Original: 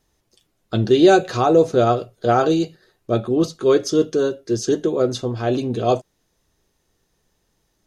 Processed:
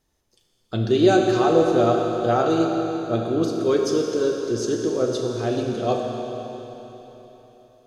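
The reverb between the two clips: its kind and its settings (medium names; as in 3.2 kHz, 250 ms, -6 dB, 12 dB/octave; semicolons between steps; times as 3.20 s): Schroeder reverb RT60 3.8 s, combs from 27 ms, DRR 1 dB; trim -5 dB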